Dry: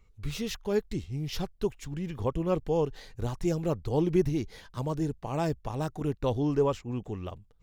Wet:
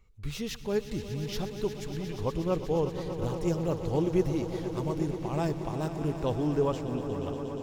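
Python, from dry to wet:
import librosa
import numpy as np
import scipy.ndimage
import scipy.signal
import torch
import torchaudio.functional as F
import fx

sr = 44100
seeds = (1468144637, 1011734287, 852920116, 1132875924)

y = fx.echo_swell(x, sr, ms=119, loudest=5, wet_db=-13.5)
y = y * librosa.db_to_amplitude(-1.5)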